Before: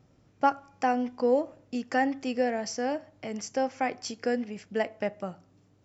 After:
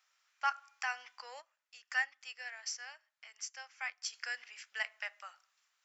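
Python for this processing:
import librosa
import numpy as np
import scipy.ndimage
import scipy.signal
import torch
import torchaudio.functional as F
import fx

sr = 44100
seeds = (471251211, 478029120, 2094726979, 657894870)

y = scipy.signal.sosfilt(scipy.signal.butter(4, 1300.0, 'highpass', fs=sr, output='sos'), x)
y = fx.upward_expand(y, sr, threshold_db=-57.0, expansion=1.5, at=(1.4, 4.12), fade=0.02)
y = y * 10.0 ** (1.0 / 20.0)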